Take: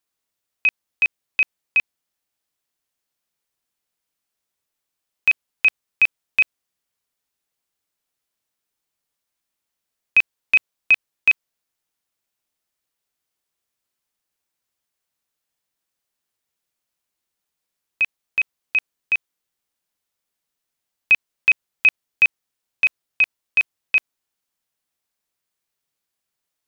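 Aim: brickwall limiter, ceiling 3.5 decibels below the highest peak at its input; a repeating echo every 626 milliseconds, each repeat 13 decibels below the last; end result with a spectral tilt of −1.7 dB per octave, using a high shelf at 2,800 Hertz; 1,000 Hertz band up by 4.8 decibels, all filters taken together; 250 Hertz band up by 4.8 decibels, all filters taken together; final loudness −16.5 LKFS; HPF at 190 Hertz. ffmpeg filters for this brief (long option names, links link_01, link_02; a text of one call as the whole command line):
ffmpeg -i in.wav -af "highpass=190,equalizer=frequency=250:width_type=o:gain=7.5,equalizer=frequency=1000:width_type=o:gain=4.5,highshelf=frequency=2800:gain=8,alimiter=limit=-6dB:level=0:latency=1,aecho=1:1:626|1252|1878:0.224|0.0493|0.0108,volume=1.5dB" out.wav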